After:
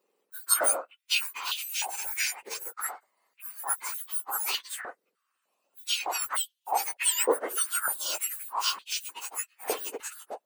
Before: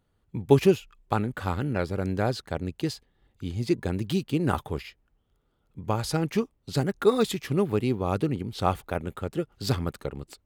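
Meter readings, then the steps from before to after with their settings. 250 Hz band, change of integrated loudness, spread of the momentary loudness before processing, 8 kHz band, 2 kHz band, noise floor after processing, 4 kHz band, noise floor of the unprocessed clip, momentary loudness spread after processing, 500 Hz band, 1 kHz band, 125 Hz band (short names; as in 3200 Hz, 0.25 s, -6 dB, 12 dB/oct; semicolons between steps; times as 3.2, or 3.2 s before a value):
-22.5 dB, -1.5 dB, 13 LU, +16.0 dB, +3.5 dB, -80 dBFS, +6.5 dB, -72 dBFS, 13 LU, -10.0 dB, -1.5 dB, under -40 dB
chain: spectrum mirrored in octaves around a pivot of 1900 Hz; stepped high-pass 3.3 Hz 470–3200 Hz; gain +2 dB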